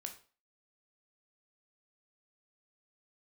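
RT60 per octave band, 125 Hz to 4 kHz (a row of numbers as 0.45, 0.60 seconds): 0.35, 0.35, 0.40, 0.40, 0.35, 0.35 seconds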